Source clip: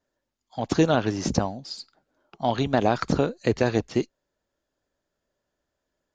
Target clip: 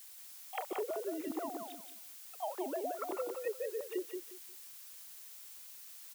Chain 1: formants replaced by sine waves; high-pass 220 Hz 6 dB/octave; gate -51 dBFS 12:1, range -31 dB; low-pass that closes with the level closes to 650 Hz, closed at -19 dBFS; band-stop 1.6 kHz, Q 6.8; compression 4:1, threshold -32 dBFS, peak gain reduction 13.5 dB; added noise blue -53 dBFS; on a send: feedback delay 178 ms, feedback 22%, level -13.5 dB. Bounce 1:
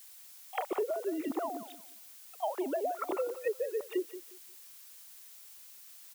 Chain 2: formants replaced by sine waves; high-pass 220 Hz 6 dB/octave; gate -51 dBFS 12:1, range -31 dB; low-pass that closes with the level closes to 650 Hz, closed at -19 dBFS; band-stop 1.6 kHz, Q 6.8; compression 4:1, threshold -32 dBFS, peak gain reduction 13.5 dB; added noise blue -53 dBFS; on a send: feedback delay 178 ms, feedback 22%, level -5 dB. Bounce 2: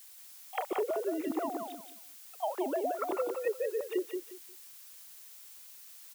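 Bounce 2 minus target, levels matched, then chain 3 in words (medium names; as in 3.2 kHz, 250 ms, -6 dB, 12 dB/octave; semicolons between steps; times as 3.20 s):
compression: peak gain reduction -5.5 dB
formants replaced by sine waves; high-pass 220 Hz 6 dB/octave; gate -51 dBFS 12:1, range -31 dB; low-pass that closes with the level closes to 650 Hz, closed at -19 dBFS; band-stop 1.6 kHz, Q 6.8; compression 4:1, threshold -39.5 dBFS, peak gain reduction 19 dB; added noise blue -53 dBFS; on a send: feedback delay 178 ms, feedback 22%, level -5 dB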